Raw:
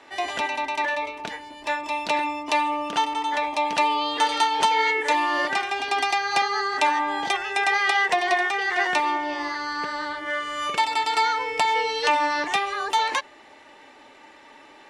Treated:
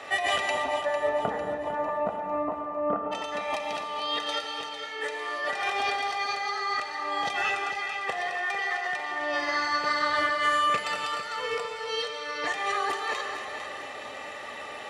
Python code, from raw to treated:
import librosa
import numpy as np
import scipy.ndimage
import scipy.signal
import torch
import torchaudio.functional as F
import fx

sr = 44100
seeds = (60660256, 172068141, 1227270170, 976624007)

y = fx.lowpass(x, sr, hz=1200.0, slope=24, at=(0.49, 3.11), fade=0.02)
y = fx.over_compress(y, sr, threshold_db=-33.0, ratio=-1.0)
y = scipy.signal.sosfilt(scipy.signal.butter(2, 71.0, 'highpass', fs=sr, output='sos'), y)
y = y + 0.61 * np.pad(y, (int(1.6 * sr / 1000.0), 0))[:len(y)]
y = fx.echo_feedback(y, sr, ms=451, feedback_pct=45, wet_db=-10)
y = fx.rev_gated(y, sr, seeds[0], gate_ms=310, shape='flat', drr_db=4.0)